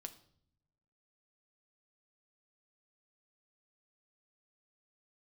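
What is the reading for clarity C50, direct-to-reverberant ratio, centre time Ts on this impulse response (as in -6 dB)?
14.5 dB, 6.5 dB, 7 ms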